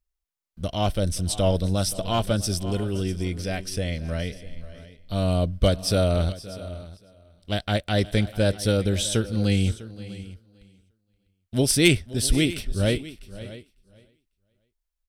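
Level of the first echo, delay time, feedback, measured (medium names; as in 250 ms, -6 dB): -18.0 dB, 523 ms, no regular repeats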